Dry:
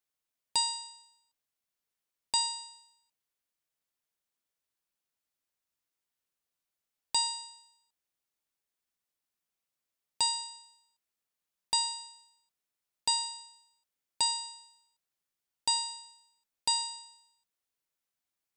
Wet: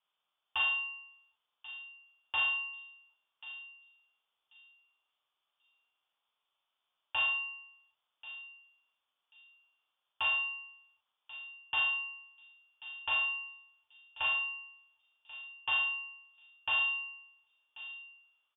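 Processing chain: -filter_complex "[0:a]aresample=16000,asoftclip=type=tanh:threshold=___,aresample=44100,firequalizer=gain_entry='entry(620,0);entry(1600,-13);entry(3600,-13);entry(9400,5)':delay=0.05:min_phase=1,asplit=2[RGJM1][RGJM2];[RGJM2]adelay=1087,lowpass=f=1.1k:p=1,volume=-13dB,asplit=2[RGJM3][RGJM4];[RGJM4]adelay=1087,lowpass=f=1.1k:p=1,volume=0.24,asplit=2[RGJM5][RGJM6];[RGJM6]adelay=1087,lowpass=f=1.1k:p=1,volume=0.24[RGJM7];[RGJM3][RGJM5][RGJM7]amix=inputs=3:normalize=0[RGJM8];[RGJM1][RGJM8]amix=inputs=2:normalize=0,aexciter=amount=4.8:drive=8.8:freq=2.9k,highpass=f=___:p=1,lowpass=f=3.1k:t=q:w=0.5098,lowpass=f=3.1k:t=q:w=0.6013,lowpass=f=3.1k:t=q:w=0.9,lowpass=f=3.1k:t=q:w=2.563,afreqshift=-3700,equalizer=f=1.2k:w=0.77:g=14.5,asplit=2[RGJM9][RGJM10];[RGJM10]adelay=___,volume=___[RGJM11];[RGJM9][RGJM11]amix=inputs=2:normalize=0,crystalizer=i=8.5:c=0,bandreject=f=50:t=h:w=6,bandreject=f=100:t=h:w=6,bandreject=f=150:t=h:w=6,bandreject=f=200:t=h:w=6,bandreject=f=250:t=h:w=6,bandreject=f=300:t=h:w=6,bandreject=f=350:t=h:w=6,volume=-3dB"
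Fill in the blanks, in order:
-33dB, 120, 39, -3dB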